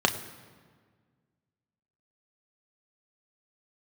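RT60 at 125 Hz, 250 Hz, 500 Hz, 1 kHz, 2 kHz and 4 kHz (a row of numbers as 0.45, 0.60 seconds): 2.2, 2.1, 1.7, 1.6, 1.4, 1.1 seconds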